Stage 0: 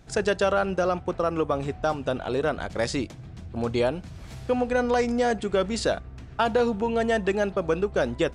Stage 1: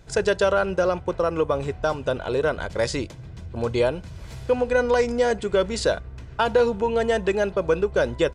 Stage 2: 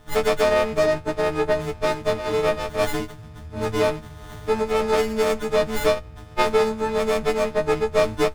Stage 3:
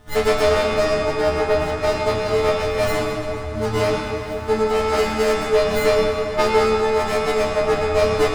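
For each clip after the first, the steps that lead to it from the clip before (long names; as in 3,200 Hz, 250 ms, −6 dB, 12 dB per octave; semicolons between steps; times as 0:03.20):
comb filter 2 ms, depth 38%; level +1.5 dB
every partial snapped to a pitch grid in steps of 6 semitones; windowed peak hold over 17 samples
convolution reverb RT60 3.8 s, pre-delay 6 ms, DRR −4 dB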